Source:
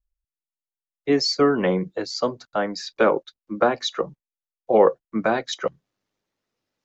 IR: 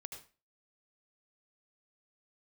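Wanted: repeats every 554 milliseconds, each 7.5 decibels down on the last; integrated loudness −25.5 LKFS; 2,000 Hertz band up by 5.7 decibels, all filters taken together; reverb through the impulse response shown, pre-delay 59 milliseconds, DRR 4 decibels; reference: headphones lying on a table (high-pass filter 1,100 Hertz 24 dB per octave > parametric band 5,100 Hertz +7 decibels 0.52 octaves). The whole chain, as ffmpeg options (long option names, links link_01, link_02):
-filter_complex "[0:a]equalizer=frequency=2000:width_type=o:gain=8,aecho=1:1:554|1108|1662|2216|2770:0.422|0.177|0.0744|0.0312|0.0131,asplit=2[link_01][link_02];[1:a]atrim=start_sample=2205,adelay=59[link_03];[link_02][link_03]afir=irnorm=-1:irlink=0,volume=0dB[link_04];[link_01][link_04]amix=inputs=2:normalize=0,highpass=frequency=1100:width=0.5412,highpass=frequency=1100:width=1.3066,equalizer=frequency=5100:width_type=o:width=0.52:gain=7,volume=-2.5dB"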